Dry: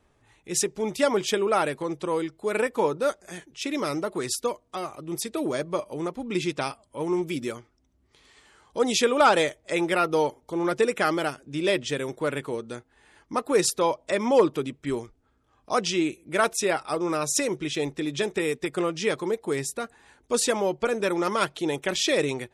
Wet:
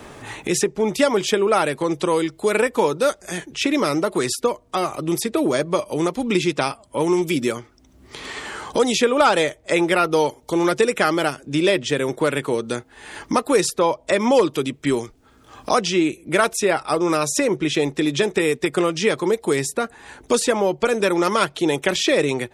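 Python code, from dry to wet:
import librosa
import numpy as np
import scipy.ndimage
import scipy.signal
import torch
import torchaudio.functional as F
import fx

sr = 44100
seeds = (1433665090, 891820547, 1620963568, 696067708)

y = fx.band_squash(x, sr, depth_pct=70)
y = y * 10.0 ** (6.0 / 20.0)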